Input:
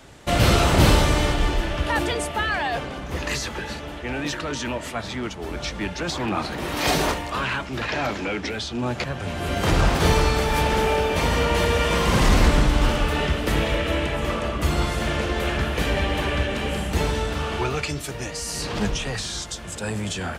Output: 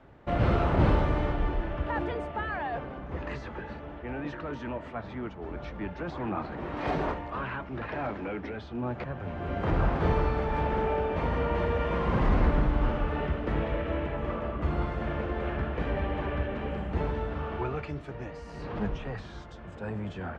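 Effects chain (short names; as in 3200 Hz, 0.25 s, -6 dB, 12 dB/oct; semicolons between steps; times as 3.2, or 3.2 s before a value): LPF 1500 Hz 12 dB/oct; gain -6.5 dB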